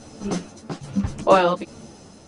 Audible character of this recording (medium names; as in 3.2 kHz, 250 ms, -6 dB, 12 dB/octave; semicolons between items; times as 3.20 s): tremolo saw down 1.2 Hz, depth 60%; a shimmering, thickened sound